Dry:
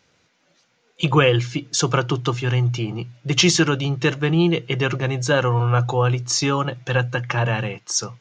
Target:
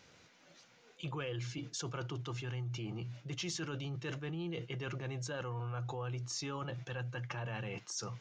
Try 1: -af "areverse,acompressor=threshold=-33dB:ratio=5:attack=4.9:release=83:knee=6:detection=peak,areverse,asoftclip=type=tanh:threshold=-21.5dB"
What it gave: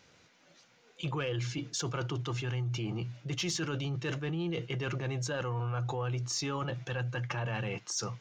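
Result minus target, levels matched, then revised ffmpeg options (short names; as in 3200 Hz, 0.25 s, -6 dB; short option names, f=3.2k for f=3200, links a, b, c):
compressor: peak gain reduction -6.5 dB
-af "areverse,acompressor=threshold=-41dB:ratio=5:attack=4.9:release=83:knee=6:detection=peak,areverse,asoftclip=type=tanh:threshold=-21.5dB"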